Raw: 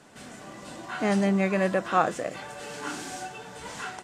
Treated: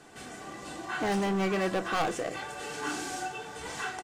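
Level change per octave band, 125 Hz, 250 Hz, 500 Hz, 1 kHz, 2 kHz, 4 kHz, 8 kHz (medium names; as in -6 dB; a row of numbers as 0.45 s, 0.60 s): -5.5 dB, -5.0 dB, -3.5 dB, -3.0 dB, -1.0 dB, +1.5 dB, +0.5 dB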